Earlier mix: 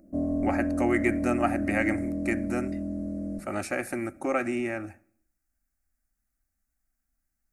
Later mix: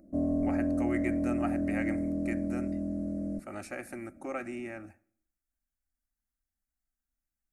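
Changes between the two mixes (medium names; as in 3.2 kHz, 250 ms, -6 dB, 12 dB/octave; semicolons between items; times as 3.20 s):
speech -9.5 dB; background: send -11.0 dB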